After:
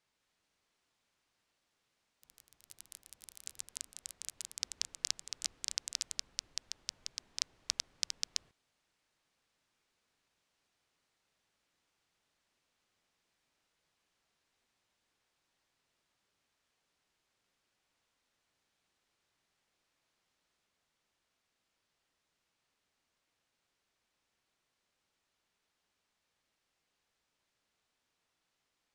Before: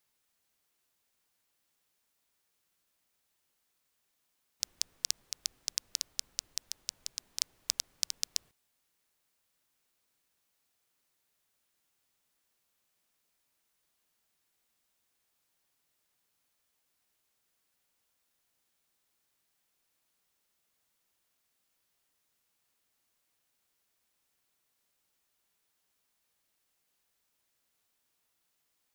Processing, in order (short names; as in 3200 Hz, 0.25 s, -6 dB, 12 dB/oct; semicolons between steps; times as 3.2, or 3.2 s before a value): echoes that change speed 0.199 s, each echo +6 st, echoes 3; air absorption 80 m; gain +1.5 dB